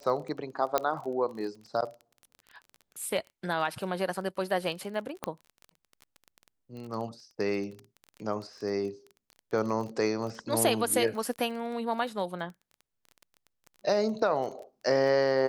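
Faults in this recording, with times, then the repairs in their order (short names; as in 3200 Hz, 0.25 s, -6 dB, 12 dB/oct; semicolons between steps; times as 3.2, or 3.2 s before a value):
crackle 22/s -37 dBFS
0.78 pop -11 dBFS
5.24 pop -16 dBFS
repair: de-click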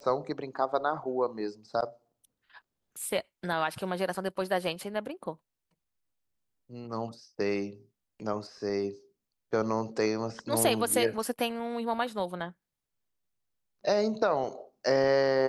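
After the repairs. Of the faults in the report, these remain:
none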